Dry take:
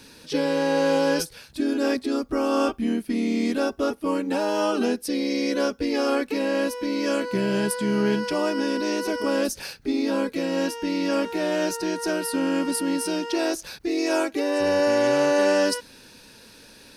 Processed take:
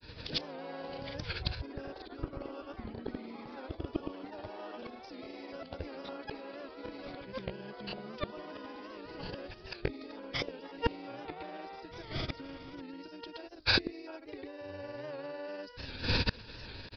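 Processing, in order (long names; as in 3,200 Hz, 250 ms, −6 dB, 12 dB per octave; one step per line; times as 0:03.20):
camcorder AGC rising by 29 dB per second
downward expander −34 dBFS
low shelf with overshoot 140 Hz +10 dB, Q 1.5
gate with flip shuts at −20 dBFS, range −29 dB
granular cloud, pitch spread up and down by 0 semitones
delay with pitch and tempo change per echo 99 ms, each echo +5 semitones, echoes 3, each echo −6 dB
downsampling to 11,025 Hz
wow of a warped record 78 rpm, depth 100 cents
level +8.5 dB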